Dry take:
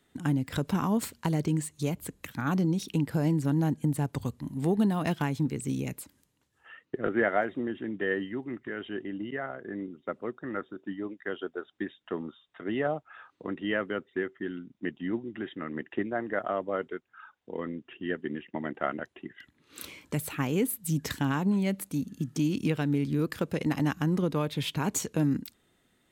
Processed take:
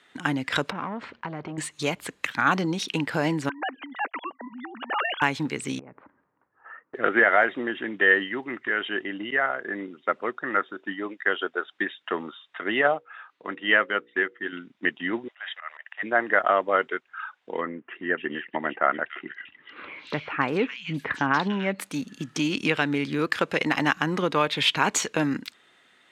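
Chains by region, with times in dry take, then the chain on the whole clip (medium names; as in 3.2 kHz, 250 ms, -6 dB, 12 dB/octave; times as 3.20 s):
0.70–1.58 s: compression 2:1, threshold -46 dBFS + waveshaping leveller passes 2 + tape spacing loss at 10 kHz 41 dB
3.49–5.22 s: formants replaced by sine waves + high-pass 950 Hz 6 dB/octave + compressor with a negative ratio -40 dBFS
5.79–6.95 s: inverse Chebyshev low-pass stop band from 5.8 kHz, stop band 70 dB + compression 8:1, threshold -43 dBFS
12.81–14.53 s: hum notches 60/120/180/240/300/360/420/480/540 Hz + upward expansion, over -43 dBFS
15.28–16.03 s: Chebyshev high-pass 620 Hz, order 5 + slow attack 140 ms
17.61–21.79 s: distance through air 230 m + bands offset in time lows, highs 290 ms, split 2.5 kHz
whole clip: low-pass 2 kHz 12 dB/octave; differentiator; loudness maximiser +35 dB; trim -6 dB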